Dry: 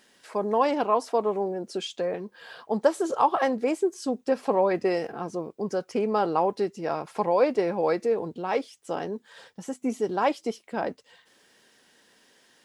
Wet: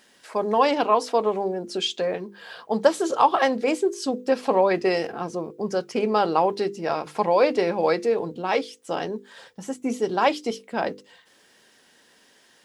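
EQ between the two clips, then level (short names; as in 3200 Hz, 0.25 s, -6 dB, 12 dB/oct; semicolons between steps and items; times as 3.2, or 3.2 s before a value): notches 50/100/150/200/250/300/350/400/450/500 Hz; dynamic EQ 3700 Hz, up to +7 dB, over -47 dBFS, Q 0.78; +3.0 dB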